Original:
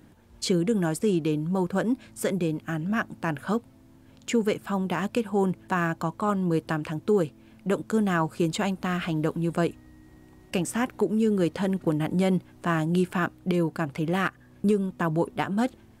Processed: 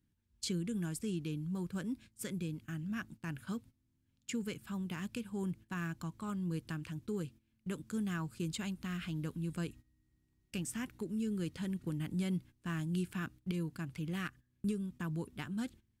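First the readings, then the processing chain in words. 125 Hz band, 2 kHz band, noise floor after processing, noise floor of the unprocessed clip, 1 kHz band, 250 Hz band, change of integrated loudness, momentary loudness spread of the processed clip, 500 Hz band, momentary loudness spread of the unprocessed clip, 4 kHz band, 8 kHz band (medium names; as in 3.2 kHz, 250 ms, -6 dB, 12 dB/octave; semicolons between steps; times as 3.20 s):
-10.0 dB, -14.0 dB, -77 dBFS, -54 dBFS, -20.0 dB, -11.5 dB, -12.5 dB, 6 LU, -19.5 dB, 5 LU, -10.0 dB, -8.0 dB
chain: gate -39 dBFS, range -14 dB; amplifier tone stack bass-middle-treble 6-0-2; trim +6.5 dB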